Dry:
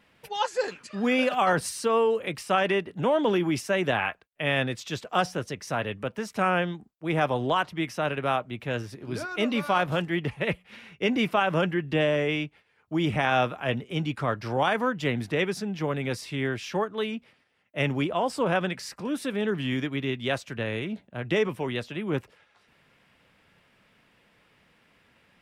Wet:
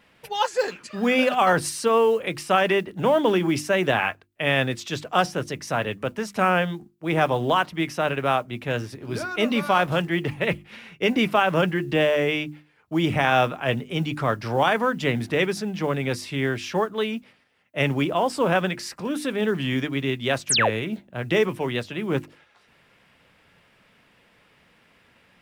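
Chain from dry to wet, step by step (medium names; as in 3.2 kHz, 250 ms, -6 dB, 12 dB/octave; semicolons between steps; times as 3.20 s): hum notches 50/100/150/200/250/300/350 Hz; modulation noise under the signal 34 dB; painted sound fall, 20.49–20.70 s, 380–12000 Hz -24 dBFS; trim +4 dB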